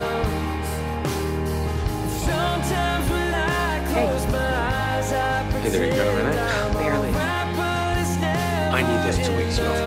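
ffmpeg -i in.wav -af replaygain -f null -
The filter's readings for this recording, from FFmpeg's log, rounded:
track_gain = +5.6 dB
track_peak = 0.358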